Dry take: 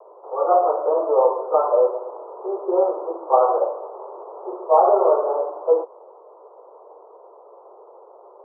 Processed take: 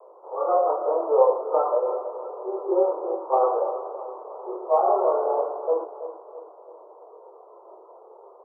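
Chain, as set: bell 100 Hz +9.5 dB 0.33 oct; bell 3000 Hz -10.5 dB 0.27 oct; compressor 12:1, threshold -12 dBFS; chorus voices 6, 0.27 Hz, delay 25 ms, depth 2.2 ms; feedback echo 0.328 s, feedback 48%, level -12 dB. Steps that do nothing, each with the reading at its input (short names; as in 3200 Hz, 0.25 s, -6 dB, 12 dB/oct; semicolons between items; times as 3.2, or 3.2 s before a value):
bell 100 Hz: input band starts at 300 Hz; bell 3000 Hz: input band ends at 1400 Hz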